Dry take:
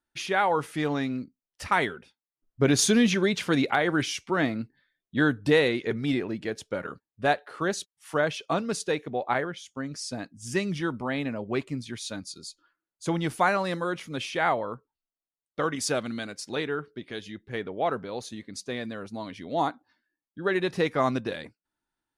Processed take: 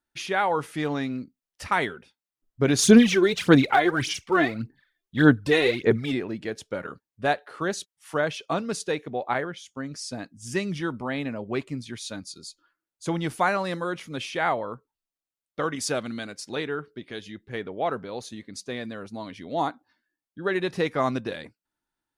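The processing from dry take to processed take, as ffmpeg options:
-filter_complex "[0:a]asplit=3[s0][s1][s2];[s0]afade=t=out:st=2.82:d=0.02[s3];[s1]aphaser=in_gain=1:out_gain=1:delay=2.9:decay=0.67:speed=1.7:type=sinusoidal,afade=t=in:st=2.82:d=0.02,afade=t=out:st=6.11:d=0.02[s4];[s2]afade=t=in:st=6.11:d=0.02[s5];[s3][s4][s5]amix=inputs=3:normalize=0"

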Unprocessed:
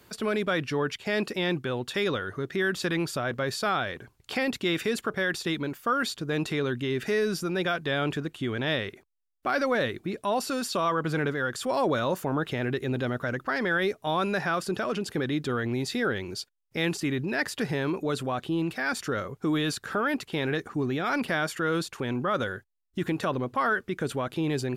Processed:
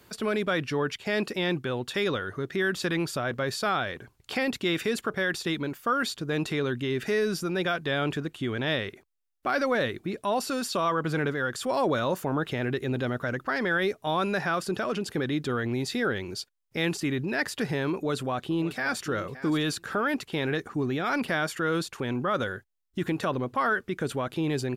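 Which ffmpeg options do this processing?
-filter_complex "[0:a]asplit=2[s0][s1];[s1]afade=t=in:st=17.93:d=0.01,afade=t=out:st=19.06:d=0.01,aecho=0:1:570|1140:0.188365|0.0282547[s2];[s0][s2]amix=inputs=2:normalize=0"

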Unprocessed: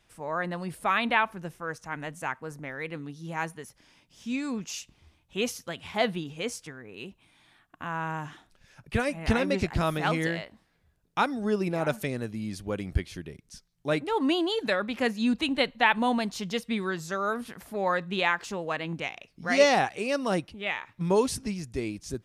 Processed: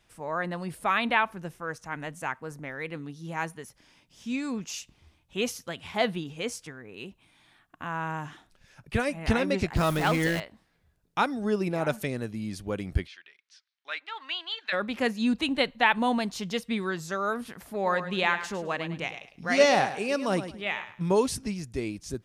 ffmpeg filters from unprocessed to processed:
-filter_complex "[0:a]asettb=1/sr,asplit=3[s0][s1][s2];[s0]atrim=end=9.764[s3];[s1]atrim=start=9.76:end=10.4,asetpts=PTS-STARTPTS,afade=t=in:d=0.004:c=qsin,afade=t=out:st=0.636:d=0.004:c=qsin,aeval=exprs='val(0)+0.5*0.0316*sgn(val(0))':c=same[s4];[s2]atrim=start=10.396[s5];[s3][s4]acrossfade=d=0.004:c1=hsin:c2=qsin[s6];[s6][s5]acrossfade=d=0.004:c1=qsin:c2=hsin,asplit=3[s7][s8][s9];[s7]afade=t=out:st=13.06:d=0.02[s10];[s8]asuperpass=centerf=2400:order=4:qfactor=0.82,afade=t=in:st=13.06:d=0.02,afade=t=out:st=14.72:d=0.02[s11];[s9]afade=t=in:st=14.72:d=0.02[s12];[s10][s11][s12]amix=inputs=3:normalize=0,asettb=1/sr,asplit=3[s13][s14][s15];[s13]atrim=end=17.744[s16];[s14]atrim=start=17.74:end=21.12,asetpts=PTS-STARTPTS,afade=t=in:d=0.004:c=qsin,afade=t=out:st=3.376:d=0.004:c=qsin,aecho=1:1:105|210|315:0.266|0.0639|0.0153,atrim=end_sample=149058[s17];[s15]atrim=start=21.116[s18];[s16][s17]acrossfade=d=0.004:c1=hsin:c2=qsin[s19];[s19][s18]acrossfade=d=0.004:c1=qsin:c2=hsin"

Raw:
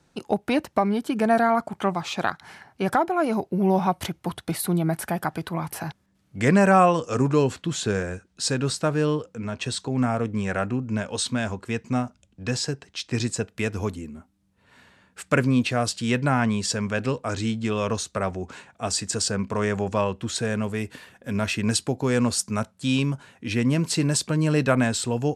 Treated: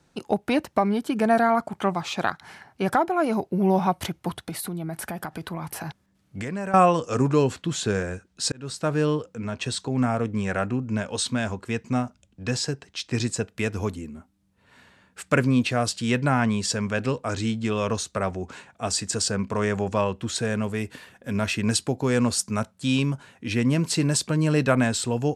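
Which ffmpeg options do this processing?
-filter_complex "[0:a]asettb=1/sr,asplit=3[s0][s1][s2];[s0]atrim=end=4.304[s3];[s1]atrim=start=4.3:end=6.74,asetpts=PTS-STARTPTS,afade=t=in:d=0.004:c=qsin,afade=t=out:st=2.436:d=0.004:c=qsin,acompressor=threshold=0.0398:ratio=6:attack=3.2:release=140:knee=1:detection=peak[s4];[s2]atrim=start=6.736[s5];[s3][s4]acrossfade=d=0.004:c1=hsin:c2=qsin[s6];[s6][s5]acrossfade=d=0.004:c1=qsin:c2=hsin,asplit=2[s7][s8];[s7]atrim=end=8.52,asetpts=PTS-STARTPTS,afade=t=out:st=8.516:d=0.004:c=hsin[s9];[s8]atrim=start=8.52,asetpts=PTS-STARTPTS,afade=t=in:d=0.42[s10];[s9][s10]concat=n=2:v=0:a=1"

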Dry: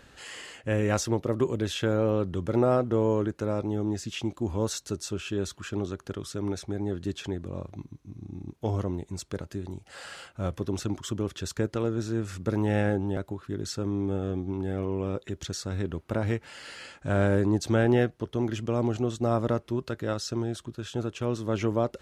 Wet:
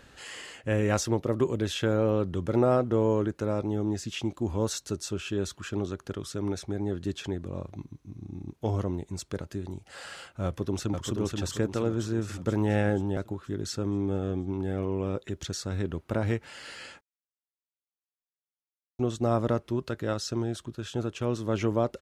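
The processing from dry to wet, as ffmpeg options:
-filter_complex "[0:a]asplit=2[s0][s1];[s1]afade=t=in:st=10.45:d=0.01,afade=t=out:st=11.1:d=0.01,aecho=0:1:480|960|1440|1920|2400|2880|3360:0.630957|0.347027|0.190865|0.104976|0.0577365|0.0317551|0.0174653[s2];[s0][s2]amix=inputs=2:normalize=0,asplit=3[s3][s4][s5];[s3]atrim=end=17.01,asetpts=PTS-STARTPTS,afade=t=out:st=17.006:d=0.004:c=hsin[s6];[s4]atrim=start=17.01:end=18.99,asetpts=PTS-STARTPTS,volume=0[s7];[s5]atrim=start=18.99,asetpts=PTS-STARTPTS,afade=t=in:d=0.004:c=hsin[s8];[s6][s7][s8]concat=n=3:v=0:a=1"

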